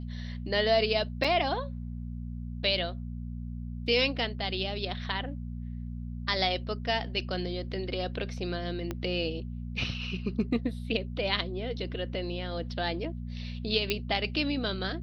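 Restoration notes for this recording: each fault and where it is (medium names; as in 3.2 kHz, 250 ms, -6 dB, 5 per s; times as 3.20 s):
hum 60 Hz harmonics 4 -37 dBFS
1.24 s: dropout 4.8 ms
8.91 s: pop -19 dBFS
13.90 s: pop -13 dBFS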